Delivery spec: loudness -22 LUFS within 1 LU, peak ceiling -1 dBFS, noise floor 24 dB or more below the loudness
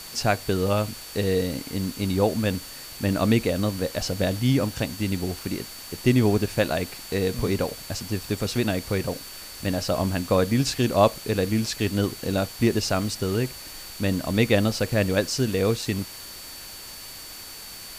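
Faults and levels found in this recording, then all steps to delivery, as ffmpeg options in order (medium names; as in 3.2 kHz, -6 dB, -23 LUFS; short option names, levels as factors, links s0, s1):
steady tone 4.5 kHz; tone level -43 dBFS; noise floor -40 dBFS; noise floor target -49 dBFS; loudness -25.0 LUFS; peak level -5.5 dBFS; loudness target -22.0 LUFS
-> -af "bandreject=f=4500:w=30"
-af "afftdn=nr=9:nf=-40"
-af "volume=1.41"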